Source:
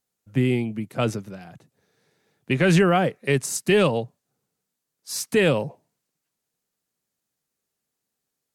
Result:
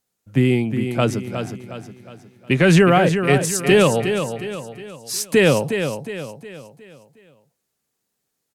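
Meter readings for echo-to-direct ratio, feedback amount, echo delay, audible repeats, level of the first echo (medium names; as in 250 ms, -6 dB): -7.0 dB, 43%, 362 ms, 4, -8.0 dB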